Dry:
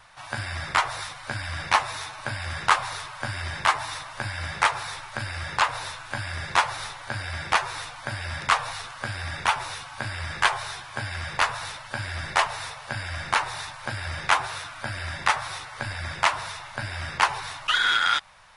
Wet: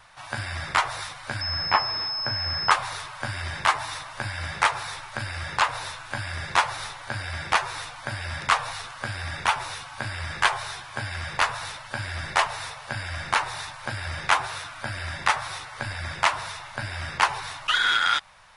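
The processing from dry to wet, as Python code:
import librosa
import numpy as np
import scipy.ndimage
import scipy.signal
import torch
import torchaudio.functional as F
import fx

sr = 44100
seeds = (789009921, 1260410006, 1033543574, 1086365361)

y = fx.pwm(x, sr, carrier_hz=5200.0, at=(1.41, 2.71))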